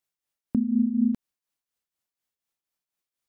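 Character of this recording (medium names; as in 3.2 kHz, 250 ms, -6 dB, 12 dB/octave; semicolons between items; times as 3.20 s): tremolo triangle 4.1 Hz, depth 70%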